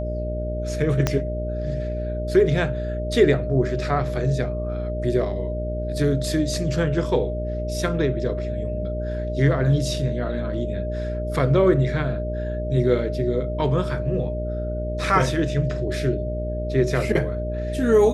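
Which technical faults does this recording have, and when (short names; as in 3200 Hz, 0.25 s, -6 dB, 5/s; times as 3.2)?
buzz 60 Hz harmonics 11 -28 dBFS
tone 610 Hz -29 dBFS
1.07 pop -6 dBFS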